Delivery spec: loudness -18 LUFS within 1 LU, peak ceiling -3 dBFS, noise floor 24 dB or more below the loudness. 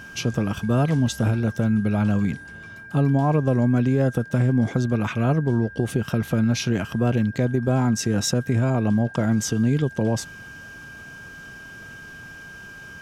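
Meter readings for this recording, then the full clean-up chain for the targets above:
steady tone 1.6 kHz; tone level -39 dBFS; loudness -22.5 LUFS; peak level -10.0 dBFS; loudness target -18.0 LUFS
-> band-stop 1.6 kHz, Q 30; trim +4.5 dB

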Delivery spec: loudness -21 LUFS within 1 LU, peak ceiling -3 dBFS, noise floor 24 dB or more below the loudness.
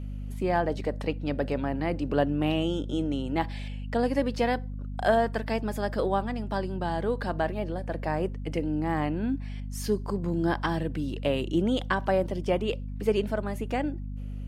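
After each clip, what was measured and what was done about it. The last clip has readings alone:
hum 50 Hz; highest harmonic 250 Hz; hum level -33 dBFS; loudness -29.0 LUFS; peak level -12.0 dBFS; loudness target -21.0 LUFS
-> de-hum 50 Hz, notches 5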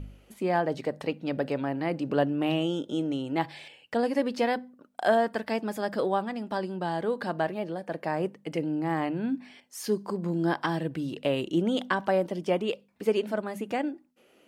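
hum not found; loudness -29.5 LUFS; peak level -12.0 dBFS; loudness target -21.0 LUFS
-> trim +8.5 dB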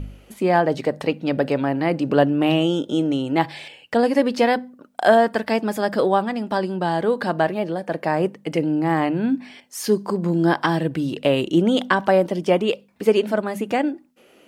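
loudness -21.0 LUFS; peak level -3.5 dBFS; noise floor -53 dBFS

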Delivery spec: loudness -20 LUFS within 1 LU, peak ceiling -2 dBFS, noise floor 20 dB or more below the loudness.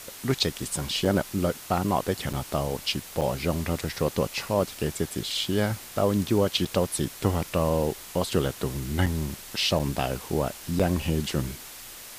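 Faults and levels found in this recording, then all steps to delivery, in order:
dropouts 7; longest dropout 6.2 ms; noise floor -43 dBFS; noise floor target -47 dBFS; loudness -27.0 LUFS; peak level -10.0 dBFS; loudness target -20.0 LUFS
-> interpolate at 1.05/2.33/3.21/6.65/9.06/9.79/10.79 s, 6.2 ms; noise reduction 6 dB, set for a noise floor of -43 dBFS; trim +7 dB

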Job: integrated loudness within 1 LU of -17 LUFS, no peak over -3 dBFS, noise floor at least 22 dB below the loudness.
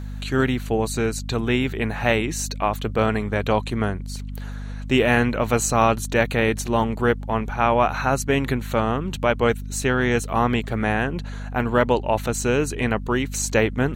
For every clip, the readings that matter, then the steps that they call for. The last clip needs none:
hum 50 Hz; highest harmonic 250 Hz; hum level -29 dBFS; loudness -22.0 LUFS; peak level -4.0 dBFS; loudness target -17.0 LUFS
-> de-hum 50 Hz, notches 5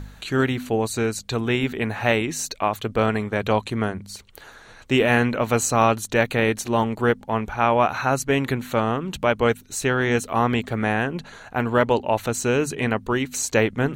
hum not found; loudness -22.5 LUFS; peak level -4.0 dBFS; loudness target -17.0 LUFS
-> trim +5.5 dB; peak limiter -3 dBFS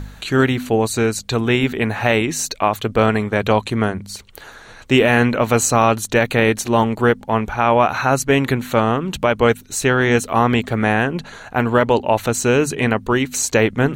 loudness -17.5 LUFS; peak level -3.0 dBFS; noise floor -41 dBFS

